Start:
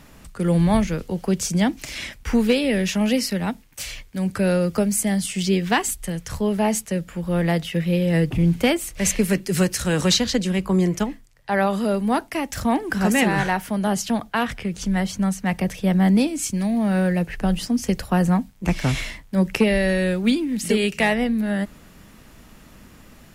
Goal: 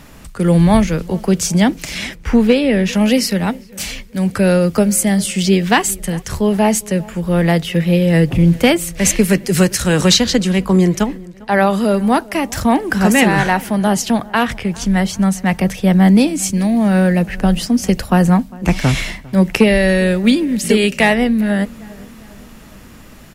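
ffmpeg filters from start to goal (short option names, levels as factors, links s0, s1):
-filter_complex "[0:a]asettb=1/sr,asplit=3[s0][s1][s2];[s0]atrim=end=2.154[s3];[s1]atrim=start=2.15:end=2.93,asetpts=PTS-STARTPTS,afade=t=in:d=0.004:c=qsin,afade=t=out:st=0.776:d=0.004:c=qsin,highshelf=f=3600:g=-9.5[s4];[s2]atrim=start=2.926[s5];[s3][s4]acrossfade=d=0.004:c1=hsin:c2=qsin[s6];[s6][s5]acrossfade=d=0.004:c1=qsin:c2=hsin,asplit=2[s7][s8];[s8]adelay=401,lowpass=f=1900:p=1,volume=0.0794,asplit=2[s9][s10];[s10]adelay=401,lowpass=f=1900:p=1,volume=0.53,asplit=2[s11][s12];[s12]adelay=401,lowpass=f=1900:p=1,volume=0.53,asplit=2[s13][s14];[s14]adelay=401,lowpass=f=1900:p=1,volume=0.53[s15];[s7][s9][s11][s13][s15]amix=inputs=5:normalize=0,volume=2.24"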